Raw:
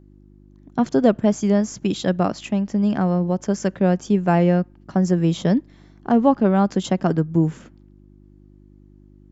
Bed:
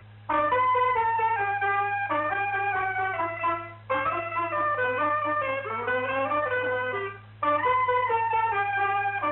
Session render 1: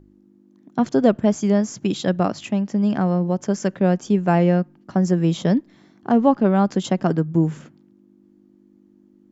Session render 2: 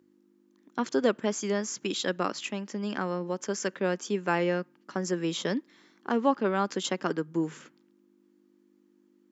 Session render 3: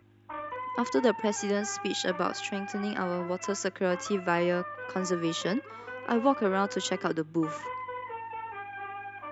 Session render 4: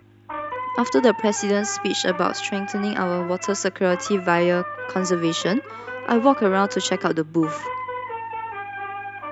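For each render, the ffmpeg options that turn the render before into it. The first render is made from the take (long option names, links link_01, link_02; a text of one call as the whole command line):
ffmpeg -i in.wav -af "bandreject=frequency=50:width_type=h:width=4,bandreject=frequency=100:width_type=h:width=4,bandreject=frequency=150:width_type=h:width=4" out.wav
ffmpeg -i in.wav -af "highpass=460,equalizer=frequency=690:width_type=o:width=0.61:gain=-12.5" out.wav
ffmpeg -i in.wav -i bed.wav -filter_complex "[1:a]volume=-14dB[link_01];[0:a][link_01]amix=inputs=2:normalize=0" out.wav
ffmpeg -i in.wav -af "volume=8dB" out.wav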